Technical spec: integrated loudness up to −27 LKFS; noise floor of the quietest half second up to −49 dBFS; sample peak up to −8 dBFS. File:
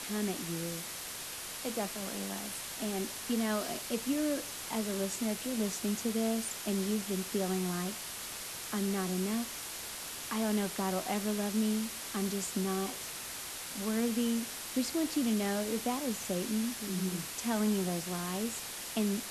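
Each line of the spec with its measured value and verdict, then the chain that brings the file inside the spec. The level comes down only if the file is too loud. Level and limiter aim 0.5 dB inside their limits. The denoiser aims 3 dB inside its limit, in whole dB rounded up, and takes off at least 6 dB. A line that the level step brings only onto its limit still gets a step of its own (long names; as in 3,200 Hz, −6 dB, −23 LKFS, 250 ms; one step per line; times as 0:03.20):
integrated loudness −34.0 LKFS: in spec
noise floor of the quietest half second −42 dBFS: out of spec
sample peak −18.5 dBFS: in spec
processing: broadband denoise 10 dB, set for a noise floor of −42 dBFS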